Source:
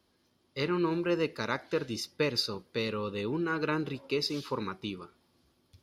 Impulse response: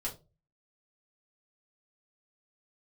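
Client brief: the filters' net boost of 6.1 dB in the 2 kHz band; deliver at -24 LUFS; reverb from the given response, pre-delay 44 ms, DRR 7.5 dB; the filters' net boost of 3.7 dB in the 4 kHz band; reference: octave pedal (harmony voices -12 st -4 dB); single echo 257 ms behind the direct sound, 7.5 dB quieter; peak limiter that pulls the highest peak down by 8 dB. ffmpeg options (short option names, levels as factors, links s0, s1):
-filter_complex "[0:a]equalizer=f=2000:t=o:g=7.5,equalizer=f=4000:t=o:g=3,alimiter=limit=0.106:level=0:latency=1,aecho=1:1:257:0.422,asplit=2[s0][s1];[1:a]atrim=start_sample=2205,adelay=44[s2];[s1][s2]afir=irnorm=-1:irlink=0,volume=0.355[s3];[s0][s3]amix=inputs=2:normalize=0,asplit=2[s4][s5];[s5]asetrate=22050,aresample=44100,atempo=2,volume=0.631[s6];[s4][s6]amix=inputs=2:normalize=0,volume=1.88"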